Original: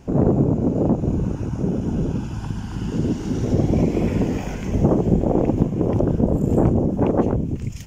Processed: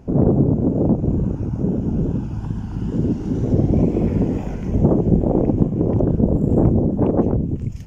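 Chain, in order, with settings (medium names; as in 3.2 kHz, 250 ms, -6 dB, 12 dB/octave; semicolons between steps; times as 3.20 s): wow and flutter 52 cents; tilt shelf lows +6.5 dB, about 1.1 kHz; trim -4 dB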